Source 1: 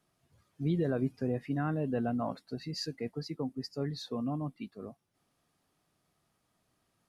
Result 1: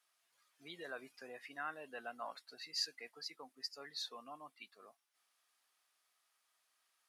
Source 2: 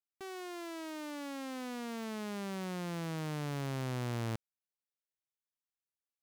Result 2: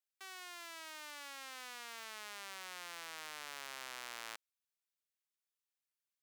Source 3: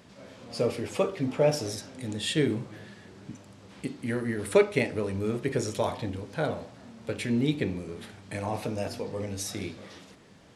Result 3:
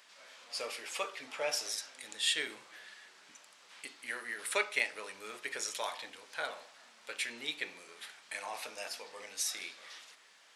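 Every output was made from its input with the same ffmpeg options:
-af "highpass=1.3k,volume=1dB"

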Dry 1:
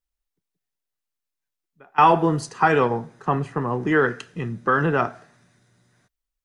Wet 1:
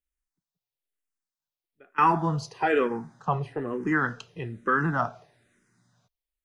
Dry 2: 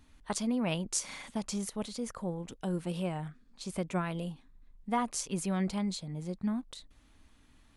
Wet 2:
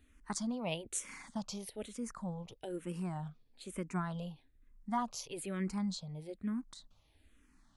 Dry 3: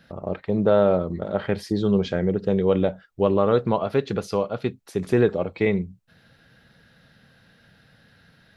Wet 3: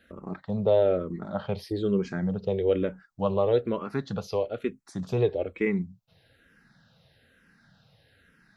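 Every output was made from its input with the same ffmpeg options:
-filter_complex "[0:a]asplit=2[a][b];[b]afreqshift=-1.1[c];[a][c]amix=inputs=2:normalize=1,volume=-2.5dB"

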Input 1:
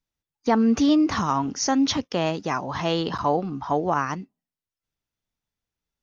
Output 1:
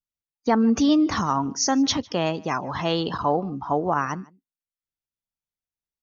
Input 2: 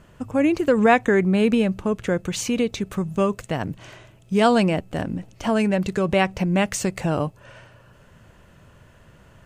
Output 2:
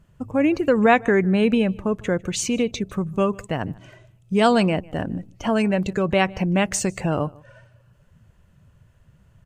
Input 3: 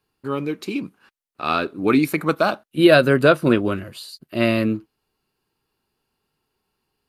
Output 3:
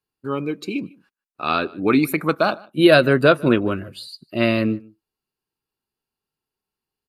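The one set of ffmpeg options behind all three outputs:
-filter_complex "[0:a]afftdn=nr=13:nf=-40,highshelf=f=5.7k:g=5.5,asplit=2[a][b];[b]adelay=151.6,volume=-24dB,highshelf=f=4k:g=-3.41[c];[a][c]amix=inputs=2:normalize=0"

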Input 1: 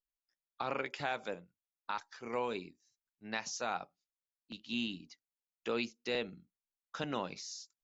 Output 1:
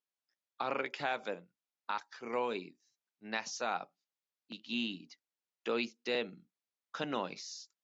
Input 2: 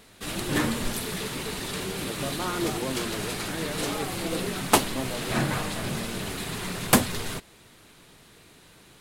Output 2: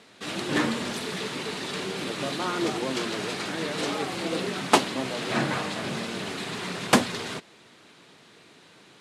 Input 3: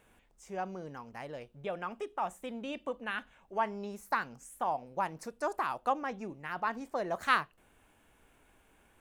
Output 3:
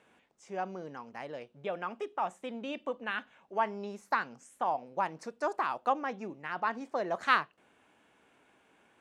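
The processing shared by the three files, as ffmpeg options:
-af "highpass=180,lowpass=6.2k,volume=1.5dB"

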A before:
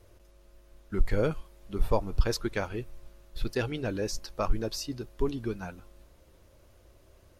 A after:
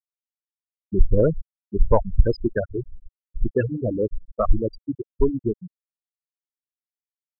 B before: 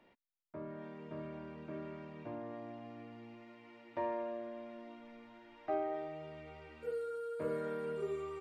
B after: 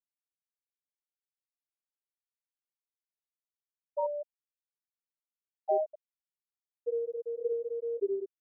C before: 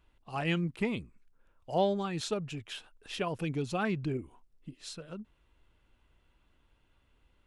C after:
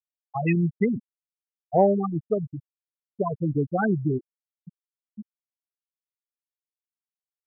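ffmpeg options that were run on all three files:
-af "highshelf=f=8.9k:g=-6.5,afftfilt=real='re*gte(hypot(re,im),0.112)':imag='im*gte(hypot(re,im),0.112)':win_size=1024:overlap=0.75,acontrast=80,volume=2.5dB"

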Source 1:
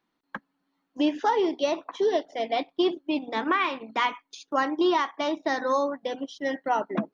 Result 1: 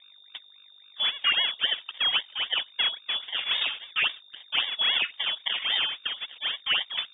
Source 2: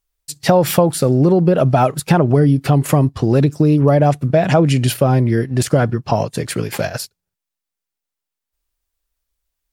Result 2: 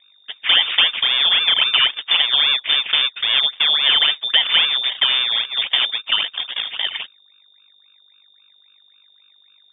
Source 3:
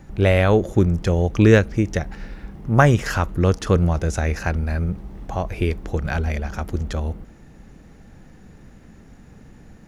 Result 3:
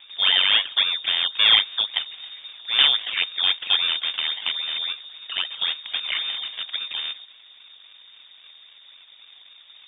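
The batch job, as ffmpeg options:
-filter_complex "[0:a]aeval=exprs='val(0)+0.00501*(sin(2*PI*50*n/s)+sin(2*PI*2*50*n/s)/2+sin(2*PI*3*50*n/s)/3+sin(2*PI*4*50*n/s)/4+sin(2*PI*5*50*n/s)/5)':c=same,acrusher=samples=26:mix=1:aa=0.000001:lfo=1:lforange=26:lforate=3.7,asplit=2[a][b];[b]highpass=f=720:p=1,volume=7dB,asoftclip=type=tanh:threshold=-0.5dB[c];[a][c]amix=inputs=2:normalize=0,lowpass=f=2.5k:p=1,volume=-6dB,lowpass=f=3.1k:t=q:w=0.5098,lowpass=f=3.1k:t=q:w=0.6013,lowpass=f=3.1k:t=q:w=0.9,lowpass=f=3.1k:t=q:w=2.563,afreqshift=-3700,volume=-1.5dB"

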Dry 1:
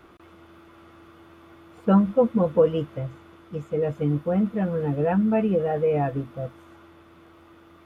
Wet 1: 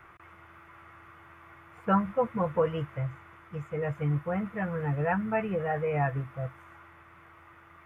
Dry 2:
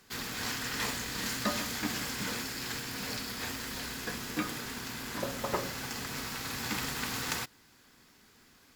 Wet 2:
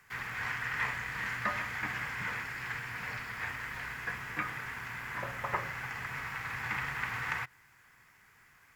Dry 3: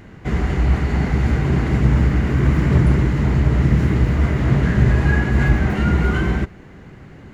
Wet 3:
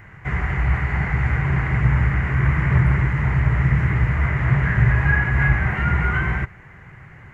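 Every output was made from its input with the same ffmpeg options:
-filter_complex "[0:a]equalizer=f=125:t=o:w=1:g=7,equalizer=f=250:t=o:w=1:g=-11,equalizer=f=500:t=o:w=1:g=-3,equalizer=f=1k:t=o:w=1:g=5,equalizer=f=2k:t=o:w=1:g=12,equalizer=f=4k:t=o:w=1:g=-10,acrossover=split=4300[a][b];[b]acompressor=threshold=-53dB:ratio=4:attack=1:release=60[c];[a][c]amix=inputs=2:normalize=0,volume=-4.5dB"

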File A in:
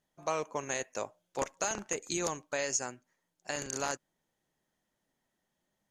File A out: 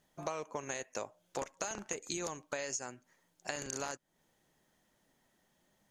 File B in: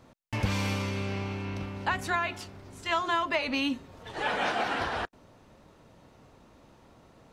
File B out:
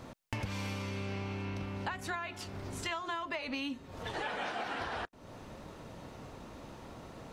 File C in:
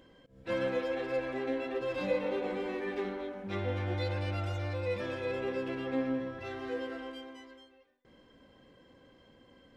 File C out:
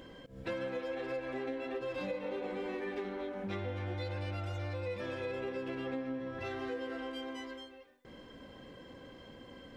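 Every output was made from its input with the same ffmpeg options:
-af "acompressor=threshold=-45dB:ratio=5,volume=8dB"

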